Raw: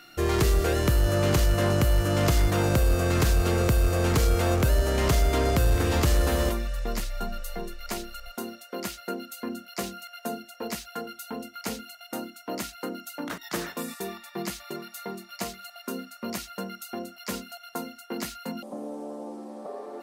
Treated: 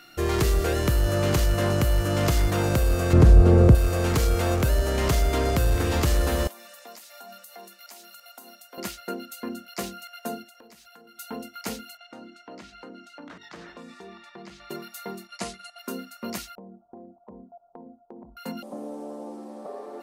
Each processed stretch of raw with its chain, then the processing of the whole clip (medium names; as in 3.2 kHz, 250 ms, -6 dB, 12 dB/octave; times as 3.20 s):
3.13–3.75 s: low-pass 12 kHz 24 dB/octave + tilt shelf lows +10 dB, about 1.1 kHz
6.47–8.78 s: tilt EQ +3.5 dB/octave + compression, threshold -34 dBFS + rippled Chebyshev high-pass 190 Hz, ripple 9 dB
10.43–11.19 s: high-pass 94 Hz + compression 10:1, threshold -48 dBFS
11.97–14.70 s: hum notches 50/100/150/200/250/300/350/400/450 Hz + compression 3:1, threshold -41 dBFS + distance through air 120 m
15.27–15.79 s: steep low-pass 11 kHz 96 dB/octave + gate -47 dBFS, range -6 dB
16.55–18.37 s: steep low-pass 1 kHz 72 dB/octave + compression 10:1, threshold -40 dBFS
whole clip: none